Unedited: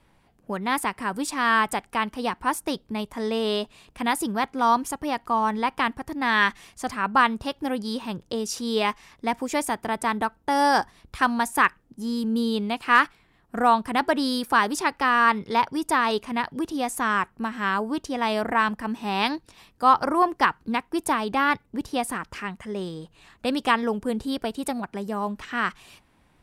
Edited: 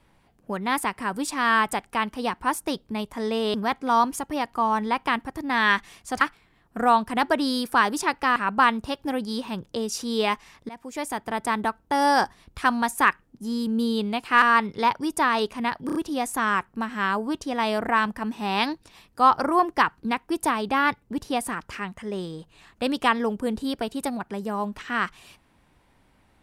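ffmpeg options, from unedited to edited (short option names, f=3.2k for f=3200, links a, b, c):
-filter_complex "[0:a]asplit=9[a][b][c][d][e][f][g][h][i];[a]atrim=end=3.542[j];[b]atrim=start=4.258:end=6.932[k];[c]atrim=start=12.988:end=15.142[l];[d]atrim=start=6.928:end=9.26,asetpts=PTS-STARTPTS,afade=t=out:st=2.328:d=0.004:c=hsin:silence=0.1[m];[e]atrim=start=9.26:end=12.992,asetpts=PTS-STARTPTS,afade=t=in:d=1:c=qsin:silence=0.1[n];[f]atrim=start=15.138:end=16.612[o];[g]atrim=start=16.578:end=16.612[p];[h]atrim=start=16.578:end=16.612[q];[i]atrim=start=16.578[r];[j][k]acrossfade=d=0.004:c1=hsin:c2=hsin[s];[s][l]acrossfade=d=0.004:c1=hsin:c2=hsin[t];[m][n]concat=n=2:v=0:a=1[u];[t][u]acrossfade=d=0.004:c1=hsin:c2=hsin[v];[v][o]acrossfade=d=0.004:c1=hsin:c2=hsin[w];[w][p]acrossfade=d=0.004:c1=hsin:c2=hsin[x];[x][q]acrossfade=d=0.004:c1=hsin:c2=hsin[y];[y][r]acrossfade=d=0.004:c1=hsin:c2=hsin"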